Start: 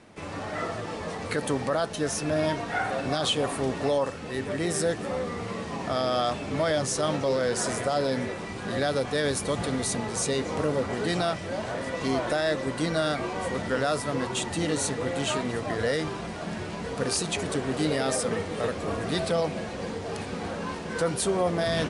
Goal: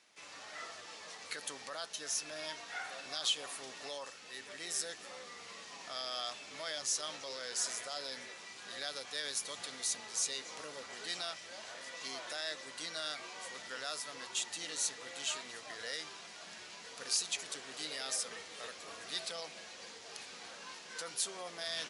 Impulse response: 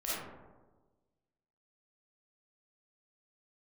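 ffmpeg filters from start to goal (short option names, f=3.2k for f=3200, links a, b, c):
-af "bandpass=f=7.9k:t=q:w=0.71:csg=0,equalizer=f=8.8k:w=3:g=-9"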